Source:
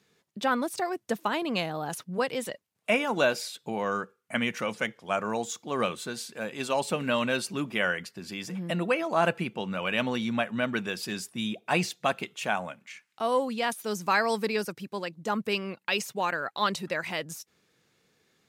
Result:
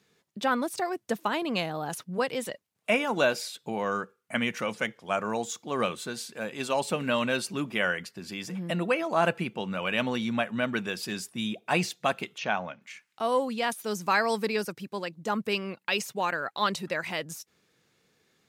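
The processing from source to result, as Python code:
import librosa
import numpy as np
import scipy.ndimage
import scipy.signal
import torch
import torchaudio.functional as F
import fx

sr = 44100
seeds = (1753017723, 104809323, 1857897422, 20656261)

y = fx.steep_lowpass(x, sr, hz=6300.0, slope=96, at=(12.38, 12.82))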